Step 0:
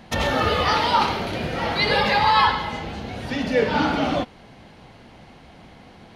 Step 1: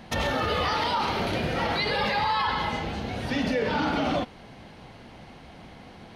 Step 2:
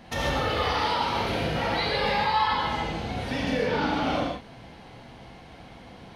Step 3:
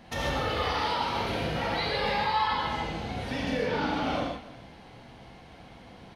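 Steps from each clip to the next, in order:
band-stop 7.1 kHz, Q 23; peak limiter -17.5 dBFS, peak gain reduction 11.5 dB
gated-style reverb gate 180 ms flat, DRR -2.5 dB; trim -4 dB
delay 282 ms -19 dB; trim -3 dB

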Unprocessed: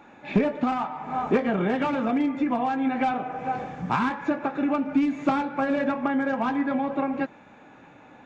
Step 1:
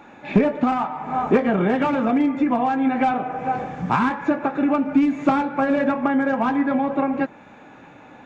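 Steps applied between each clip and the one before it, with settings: dynamic bell 4.3 kHz, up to -4 dB, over -48 dBFS, Q 0.78; trim +5 dB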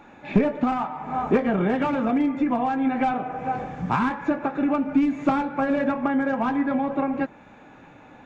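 bass shelf 70 Hz +10.5 dB; trim -3.5 dB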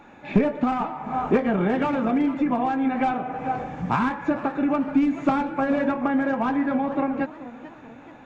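modulated delay 436 ms, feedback 47%, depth 213 cents, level -16.5 dB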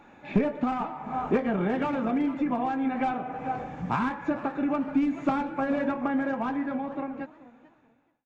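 fade out at the end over 2.08 s; trim -4.5 dB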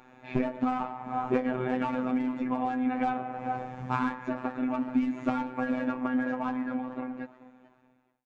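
robot voice 127 Hz

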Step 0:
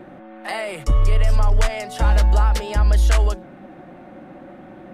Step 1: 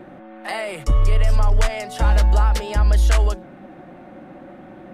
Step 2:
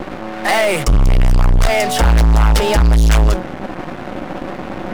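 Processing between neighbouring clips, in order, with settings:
no audible change
partial rectifier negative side -7 dB; waveshaping leveller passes 5

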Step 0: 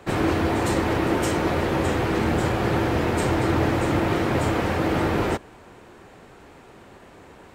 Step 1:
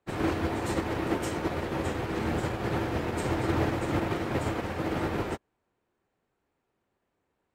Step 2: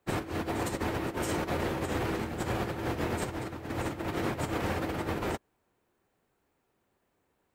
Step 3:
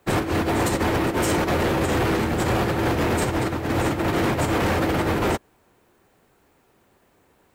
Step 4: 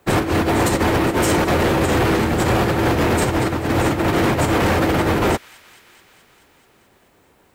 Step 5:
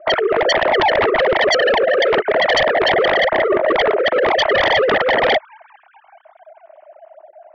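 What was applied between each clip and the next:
upward expansion 2.5:1, over -38 dBFS; trim -3.5 dB
treble shelf 8.6 kHz +8 dB; compressor with a negative ratio -32 dBFS, ratio -0.5
in parallel at +3 dB: peak limiter -27 dBFS, peak gain reduction 8.5 dB; on the sum: saturation -22 dBFS, distortion -16 dB; trim +7 dB
feedback echo behind a high-pass 215 ms, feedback 74%, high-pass 2.1 kHz, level -19 dB; trim +4.5 dB
formants replaced by sine waves; two resonant band-passes 480 Hz, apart 0.81 oct; sine folder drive 15 dB, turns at -11 dBFS

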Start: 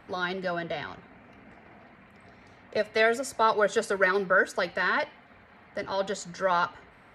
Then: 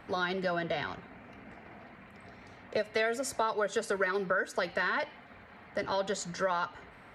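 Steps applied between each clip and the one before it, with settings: compression 5:1, threshold -29 dBFS, peak gain reduction 11 dB; trim +1.5 dB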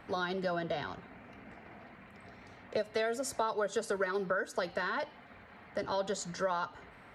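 dynamic bell 2.2 kHz, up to -7 dB, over -48 dBFS, Q 1.6; trim -1.5 dB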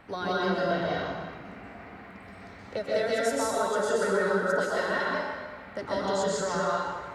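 plate-style reverb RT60 1.5 s, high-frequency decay 0.8×, pre-delay 110 ms, DRR -6 dB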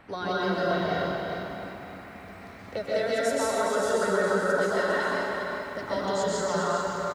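delay 406 ms -7 dB; bit-crushed delay 306 ms, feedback 55%, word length 9-bit, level -10.5 dB

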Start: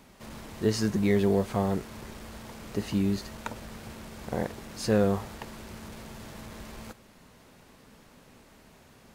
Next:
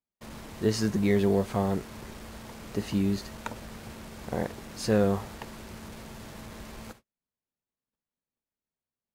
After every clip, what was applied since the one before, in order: gate -48 dBFS, range -43 dB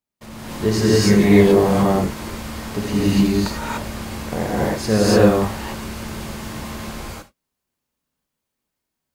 gated-style reverb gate 320 ms rising, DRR -8 dB; trim +4.5 dB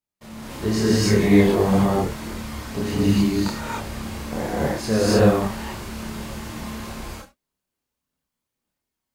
chorus voices 2, 0.86 Hz, delay 29 ms, depth 2.7 ms

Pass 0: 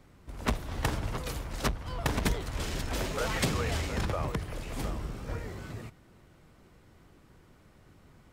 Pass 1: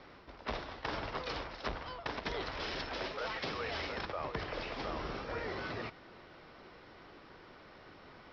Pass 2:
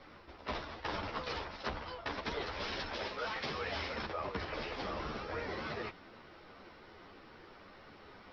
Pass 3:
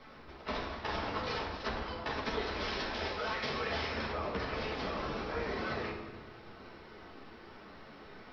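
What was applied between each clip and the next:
tone controls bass -15 dB, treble -1 dB; reverse; compression 12:1, threshold -44 dBFS, peak gain reduction 19 dB; reverse; Chebyshev low-pass 5.4 kHz, order 6; trim +9.5 dB
three-phase chorus; trim +3 dB
simulated room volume 890 m³, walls mixed, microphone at 1.5 m

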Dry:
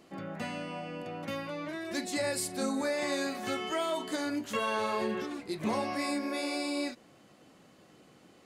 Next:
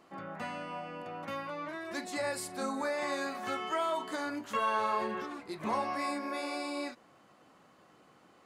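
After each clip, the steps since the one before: peaking EQ 1.1 kHz +10.5 dB 1.5 oct; trim -6.5 dB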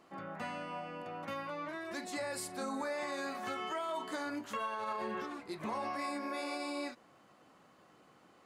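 peak limiter -28 dBFS, peak gain reduction 9 dB; trim -1.5 dB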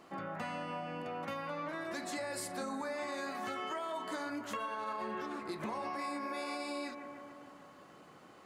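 bucket-brigade echo 147 ms, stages 2048, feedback 71%, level -12 dB; compression 3:1, threshold -43 dBFS, peak gain reduction 7.5 dB; trim +5 dB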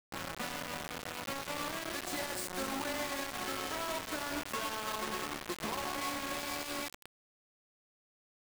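spring tank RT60 3.5 s, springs 44 ms, chirp 65 ms, DRR 7.5 dB; word length cut 6-bit, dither none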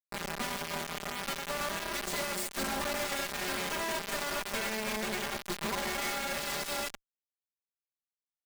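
comb filter that takes the minimum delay 5 ms; trim +4 dB

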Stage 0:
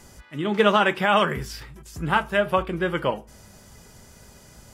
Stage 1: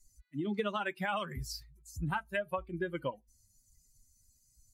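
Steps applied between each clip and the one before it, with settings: expander on every frequency bin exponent 2; compression 6:1, threshold -30 dBFS, peak gain reduction 14 dB; trim -1.5 dB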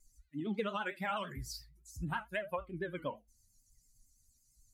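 gated-style reverb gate 100 ms falling, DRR 8.5 dB; vibrato 8.9 Hz 98 cents; trim -3 dB

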